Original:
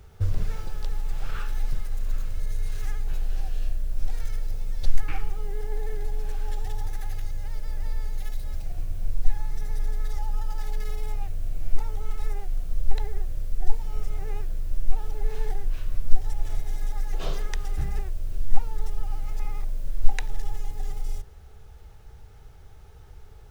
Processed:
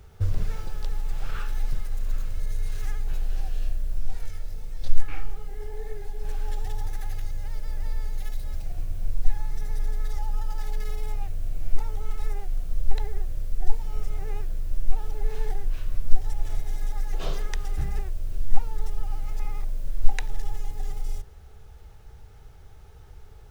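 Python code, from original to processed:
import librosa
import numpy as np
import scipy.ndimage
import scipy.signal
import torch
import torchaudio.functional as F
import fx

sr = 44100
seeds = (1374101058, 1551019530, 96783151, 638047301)

y = fx.chorus_voices(x, sr, voices=4, hz=1.5, base_ms=23, depth_ms=3.0, mix_pct=50, at=(3.98, 6.23), fade=0.02)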